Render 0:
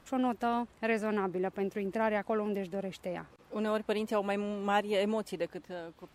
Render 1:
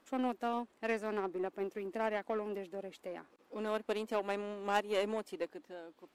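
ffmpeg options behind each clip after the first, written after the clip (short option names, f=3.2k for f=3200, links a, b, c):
-af "aeval=exprs='0.168*(cos(1*acos(clip(val(0)/0.168,-1,1)))-cos(1*PI/2))+0.0266*(cos(3*acos(clip(val(0)/0.168,-1,1)))-cos(3*PI/2))+0.0133*(cos(4*acos(clip(val(0)/0.168,-1,1)))-cos(4*PI/2))+0.015*(cos(5*acos(clip(val(0)/0.168,-1,1)))-cos(5*PI/2))+0.0119*(cos(7*acos(clip(val(0)/0.168,-1,1)))-cos(7*PI/2))':c=same,lowshelf=f=180:t=q:w=1.5:g=-14,volume=-1.5dB"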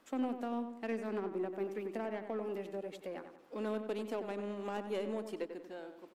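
-filter_complex "[0:a]acrossover=split=400[a][b];[b]acompressor=threshold=-43dB:ratio=6[c];[a][c]amix=inputs=2:normalize=0,asplit=2[d][e];[e]adelay=93,lowpass=f=2.5k:p=1,volume=-8dB,asplit=2[f][g];[g]adelay=93,lowpass=f=2.5k:p=1,volume=0.45,asplit=2[h][i];[i]adelay=93,lowpass=f=2.5k:p=1,volume=0.45,asplit=2[j][k];[k]adelay=93,lowpass=f=2.5k:p=1,volume=0.45,asplit=2[l][m];[m]adelay=93,lowpass=f=2.5k:p=1,volume=0.45[n];[d][f][h][j][l][n]amix=inputs=6:normalize=0,volume=1.5dB"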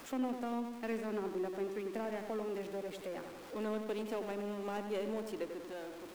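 -af "aeval=exprs='val(0)+0.5*0.00562*sgn(val(0))':c=same,volume=-1.5dB"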